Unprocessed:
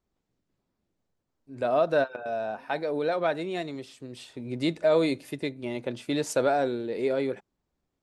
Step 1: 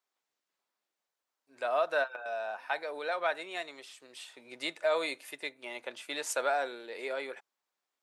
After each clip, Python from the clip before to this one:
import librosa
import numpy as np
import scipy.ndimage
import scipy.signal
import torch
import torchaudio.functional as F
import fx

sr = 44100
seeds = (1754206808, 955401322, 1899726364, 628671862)

y = scipy.signal.sosfilt(scipy.signal.butter(2, 940.0, 'highpass', fs=sr, output='sos'), x)
y = fx.dynamic_eq(y, sr, hz=4800.0, q=1.5, threshold_db=-54.0, ratio=4.0, max_db=-5)
y = y * 10.0 ** (1.5 / 20.0)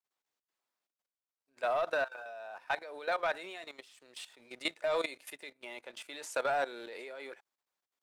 y = fx.leveller(x, sr, passes=1)
y = fx.level_steps(y, sr, step_db=15)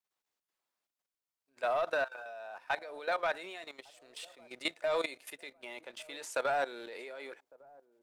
y = fx.echo_wet_lowpass(x, sr, ms=1154, feedback_pct=32, hz=730.0, wet_db=-23)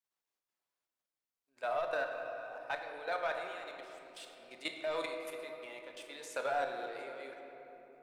y = fx.room_shoebox(x, sr, seeds[0], volume_m3=180.0, walls='hard', distance_m=0.33)
y = y * 10.0 ** (-5.0 / 20.0)